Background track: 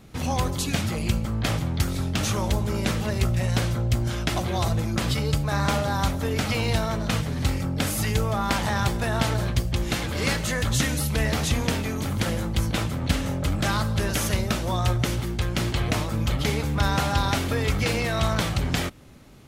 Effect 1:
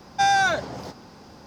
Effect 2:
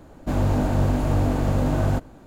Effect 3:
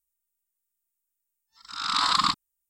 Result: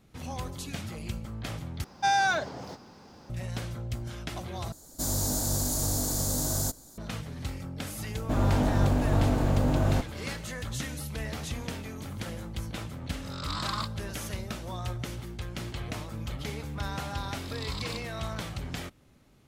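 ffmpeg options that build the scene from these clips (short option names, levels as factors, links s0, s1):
-filter_complex "[2:a]asplit=2[s0][s1];[3:a]asplit=2[s2][s3];[0:a]volume=0.266[s4];[s0]aexciter=amount=13.4:drive=8.4:freq=4200[s5];[s3]asuperstop=centerf=1400:order=4:qfactor=1.4[s6];[s4]asplit=3[s7][s8][s9];[s7]atrim=end=1.844[s10];[1:a]atrim=end=1.46,asetpts=PTS-STARTPTS,volume=0.562[s11];[s8]atrim=start=3.296:end=4.724[s12];[s5]atrim=end=2.26,asetpts=PTS-STARTPTS,volume=0.299[s13];[s9]atrim=start=6.976[s14];[s1]atrim=end=2.26,asetpts=PTS-STARTPTS,volume=0.668,afade=t=in:d=0.004:c=hsin,afade=t=out:st=2.256:d=0.004:c=hsin,adelay=353682S[s15];[s2]atrim=end=2.69,asetpts=PTS-STARTPTS,volume=0.251,afade=t=in:d=0.004:c=hsin,afade=t=out:st=2.686:d=0.004:c=hsin,adelay=508914S[s16];[s6]atrim=end=2.69,asetpts=PTS-STARTPTS,volume=0.178,afade=t=in:d=0.004:c=hsin,afade=t=out:st=2.686:d=0.004:c=hsin,adelay=15660[s17];[s10][s11]acrossfade=d=0.004:c1=hsin:c2=hsin[s18];[s18][s12]acrossfade=d=0.004:c1=hsin:c2=hsin[s19];[s19][s13]acrossfade=d=0.004:c1=hsin:c2=hsin[s20];[s20][s14]acrossfade=d=0.004:c1=hsin:c2=hsin[s21];[s21][s15][s16][s17]amix=inputs=4:normalize=0"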